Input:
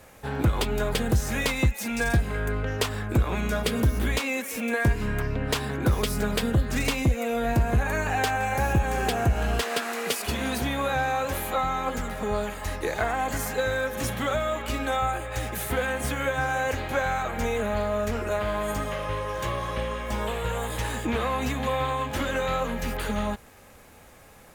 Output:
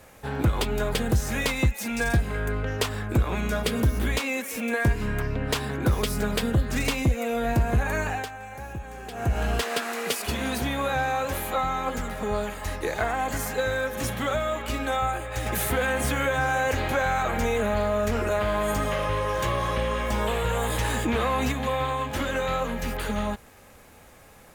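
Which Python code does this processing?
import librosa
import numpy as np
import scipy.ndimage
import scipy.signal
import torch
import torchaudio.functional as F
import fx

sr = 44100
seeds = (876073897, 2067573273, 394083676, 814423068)

y = fx.env_flatten(x, sr, amount_pct=50, at=(15.46, 21.52))
y = fx.edit(y, sr, fx.fade_down_up(start_s=8.04, length_s=1.32, db=-13.0, fade_s=0.25), tone=tone)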